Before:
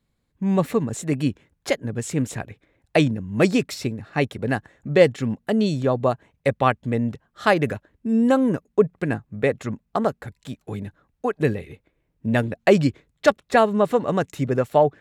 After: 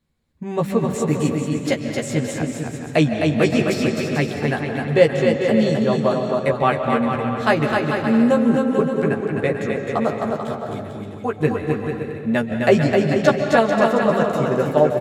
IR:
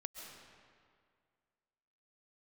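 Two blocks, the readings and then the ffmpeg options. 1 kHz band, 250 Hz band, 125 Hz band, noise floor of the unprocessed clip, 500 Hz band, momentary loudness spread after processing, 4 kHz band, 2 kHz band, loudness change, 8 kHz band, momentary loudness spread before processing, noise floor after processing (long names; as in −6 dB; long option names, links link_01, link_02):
+2.5 dB, +3.5 dB, +2.5 dB, −73 dBFS, +3.0 dB, 9 LU, +3.0 dB, +3.5 dB, +3.0 dB, +2.0 dB, 12 LU, −32 dBFS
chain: -filter_complex "[0:a]aecho=1:1:260|442|569.4|658.6|721:0.631|0.398|0.251|0.158|0.1,asplit=2[link_01][link_02];[1:a]atrim=start_sample=2205,lowpass=8000,adelay=13[link_03];[link_02][link_03]afir=irnorm=-1:irlink=0,volume=2dB[link_04];[link_01][link_04]amix=inputs=2:normalize=0,volume=-1.5dB"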